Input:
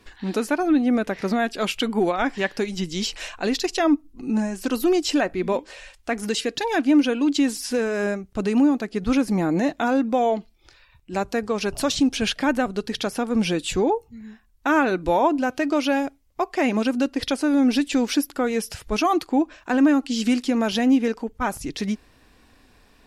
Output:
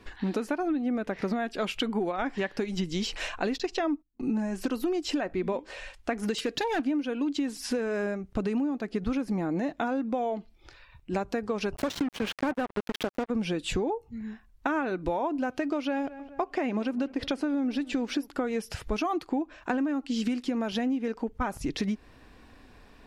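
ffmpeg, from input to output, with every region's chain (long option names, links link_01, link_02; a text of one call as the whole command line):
ffmpeg -i in.wav -filter_complex "[0:a]asettb=1/sr,asplit=3[link_01][link_02][link_03];[link_01]atrim=end=3.584[link_04];[link_02]atrim=start=3.58:end=4.38,asetpts=PTS-STARTPTS,afade=type=in:duration=0.004:curve=qsin,afade=type=out:start_time=0.796:duration=0.004:curve=qsin,agate=range=-31dB:threshold=-39dB:ratio=16:release=100:detection=peak,acrossover=split=7000[link_05][link_06];[link_06]acompressor=threshold=-54dB:ratio=4:attack=1:release=60[link_07];[link_05][link_07]amix=inputs=2:normalize=0,bandreject=frequency=50:width_type=h:width=6,bandreject=frequency=100:width_type=h:width=6,bandreject=frequency=150:width_type=h:width=6[link_08];[link_03]atrim=start=4.376[link_09];[link_04][link_08]acrossfade=duration=0.004:curve1=hsin:curve2=qsin[link_10];[link_10][link_09]acrossfade=duration=0.004:curve1=qsin:curve2=hsin,asettb=1/sr,asplit=3[link_11][link_12][link_13];[link_11]atrim=end=6.384[link_14];[link_12]atrim=start=6.38:end=6.8,asetpts=PTS-STARTPTS,afade=type=in:duration=0.004:curve=qsin,afade=type=out:start_time=0.416:duration=0.004:curve=qsin,highshelf=frequency=3800:gain=3.5,volume=19dB,asoftclip=hard,volume=-19dB[link_15];[link_13]atrim=start=6.796[link_16];[link_14][link_15]acrossfade=duration=0.004:curve1=hsin:curve2=qsin[link_17];[link_17][link_16]acrossfade=duration=0.004:curve1=qsin:curve2=hsin,asettb=1/sr,asplit=3[link_18][link_19][link_20];[link_18]atrim=end=11.764[link_21];[link_19]atrim=start=11.76:end=13.3,asetpts=PTS-STARTPTS,afade=type=in:duration=0.004:curve=qsin,afade=type=out:start_time=1.536:duration=0.004:curve=qsin,highpass=frequency=110:poles=1,acrusher=bits=3:mix=0:aa=0.5,adynamicequalizer=threshold=0.0112:dfrequency=2800:dqfactor=0.7:tfrequency=2800:tqfactor=0.7:attack=5:release=100:ratio=0.375:range=3:mode=cutabove:tftype=highshelf[link_22];[link_20]atrim=start=13.296[link_23];[link_21][link_22]acrossfade=duration=0.004:curve1=hsin:curve2=qsin[link_24];[link_24][link_23]acrossfade=duration=0.004:curve1=qsin:curve2=hsin,asettb=1/sr,asplit=3[link_25][link_26][link_27];[link_25]atrim=end=15.774[link_28];[link_26]atrim=start=15.77:end=18.28,asetpts=PTS-STARTPTS,afade=type=in:duration=0.004:curve=qsin,afade=type=out:start_time=2.506:duration=0.004:curve=qsin,highshelf=frequency=5900:gain=-5.5,asplit=2[link_29][link_30];[link_30]adelay=211,lowpass=frequency=2700:poles=1,volume=-22dB,asplit=2[link_31][link_32];[link_32]adelay=211,lowpass=frequency=2700:poles=1,volume=0.46,asplit=2[link_33][link_34];[link_34]adelay=211,lowpass=frequency=2700:poles=1,volume=0.46[link_35];[link_29][link_31][link_33][link_35]amix=inputs=4:normalize=0,atrim=end_sample=110691[link_36];[link_27]atrim=start=18.276[link_37];[link_28][link_36]acrossfade=duration=0.004:curve1=hsin:curve2=qsin[link_38];[link_38][link_37]acrossfade=duration=0.004:curve1=qsin:curve2=hsin,highshelf=frequency=4100:gain=-10,acompressor=threshold=-28dB:ratio=12,volume=2.5dB" out.wav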